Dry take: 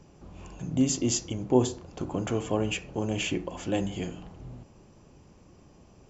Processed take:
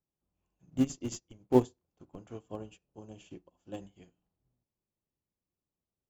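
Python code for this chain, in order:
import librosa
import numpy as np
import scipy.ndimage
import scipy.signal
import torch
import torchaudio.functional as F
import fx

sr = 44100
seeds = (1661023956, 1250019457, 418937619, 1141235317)

p1 = fx.peak_eq(x, sr, hz=2100.0, db=-9.0, octaves=0.57, at=(2.39, 3.82))
p2 = fx.schmitt(p1, sr, flips_db=-20.0)
p3 = p1 + F.gain(torch.from_numpy(p2), -5.0).numpy()
y = fx.upward_expand(p3, sr, threshold_db=-42.0, expansion=2.5)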